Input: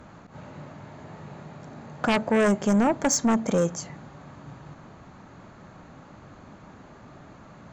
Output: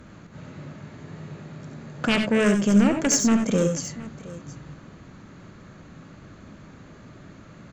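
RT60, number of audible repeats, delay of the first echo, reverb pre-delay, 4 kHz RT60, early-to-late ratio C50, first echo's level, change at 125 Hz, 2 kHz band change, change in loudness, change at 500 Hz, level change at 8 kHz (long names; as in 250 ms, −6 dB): no reverb audible, 2, 70 ms, no reverb audible, no reverb audible, no reverb audible, −8.5 dB, +4.0 dB, +2.5 dB, +2.5 dB, 0.0 dB, +3.5 dB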